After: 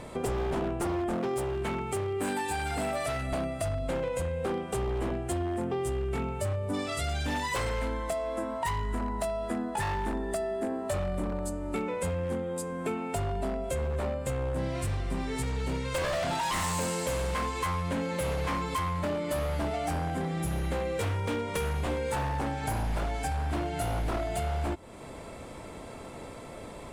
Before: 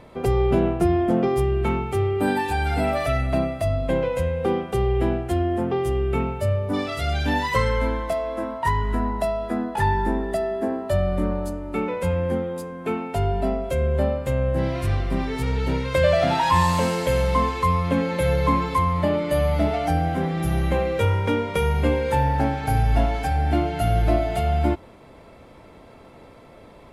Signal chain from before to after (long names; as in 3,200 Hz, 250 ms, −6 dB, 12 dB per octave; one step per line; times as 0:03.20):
parametric band 8,100 Hz +13.5 dB 0.71 octaves
wave folding −16.5 dBFS
0:01.15–0:03.32: high-pass filter 120 Hz 6 dB per octave
downward compressor 3 to 1, threshold −36 dBFS, peak gain reduction 12 dB
level +3.5 dB